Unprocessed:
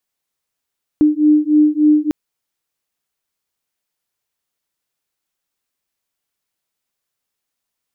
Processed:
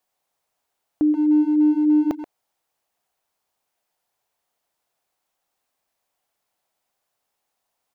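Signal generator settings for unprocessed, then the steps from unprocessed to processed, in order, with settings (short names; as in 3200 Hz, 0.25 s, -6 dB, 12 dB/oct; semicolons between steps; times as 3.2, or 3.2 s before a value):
beating tones 300 Hz, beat 3.4 Hz, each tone -12.5 dBFS 1.10 s
bell 740 Hz +11.5 dB 1.1 oct; limiter -13.5 dBFS; speakerphone echo 0.13 s, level -7 dB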